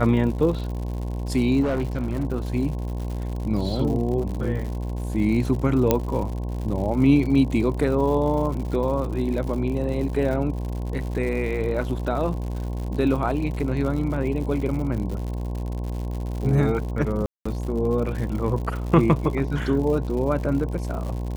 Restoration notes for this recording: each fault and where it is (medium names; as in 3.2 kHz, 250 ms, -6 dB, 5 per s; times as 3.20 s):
buzz 60 Hz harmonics 18 -28 dBFS
crackle 120 per s -31 dBFS
1.62–2.32 s: clipped -20 dBFS
5.91 s: pop -4 dBFS
17.26–17.45 s: dropout 195 ms